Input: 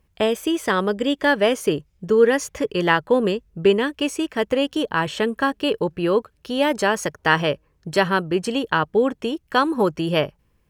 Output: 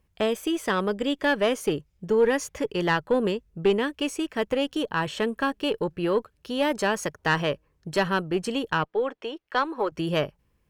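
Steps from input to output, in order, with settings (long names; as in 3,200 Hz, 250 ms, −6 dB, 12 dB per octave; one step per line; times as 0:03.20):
0:08.84–0:09.92: three-way crossover with the lows and the highs turned down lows −22 dB, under 350 Hz, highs −16 dB, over 4,700 Hz
tube saturation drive 8 dB, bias 0.3
level −3.5 dB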